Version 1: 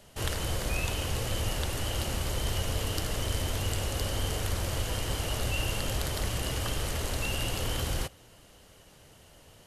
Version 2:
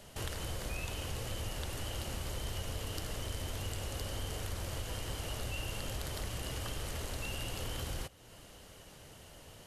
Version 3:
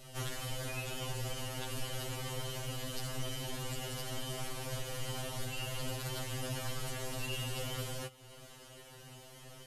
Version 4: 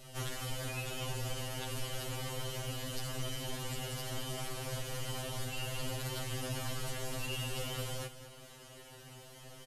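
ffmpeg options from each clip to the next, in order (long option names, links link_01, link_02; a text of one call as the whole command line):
ffmpeg -i in.wav -af "acompressor=threshold=-45dB:ratio=2,volume=1.5dB" out.wav
ffmpeg -i in.wav -af "afftfilt=real='re*2.45*eq(mod(b,6),0)':imag='im*2.45*eq(mod(b,6),0)':win_size=2048:overlap=0.75,volume=3.5dB" out.wav
ffmpeg -i in.wav -af "aecho=1:1:210:0.266" out.wav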